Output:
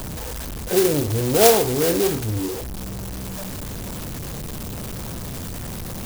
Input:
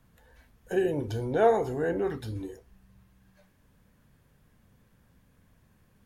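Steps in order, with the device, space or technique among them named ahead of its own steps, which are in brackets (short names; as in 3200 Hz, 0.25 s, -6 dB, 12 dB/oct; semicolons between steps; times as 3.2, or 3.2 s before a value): early CD player with a faulty converter (zero-crossing step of -32 dBFS; clock jitter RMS 0.15 ms); gain +7 dB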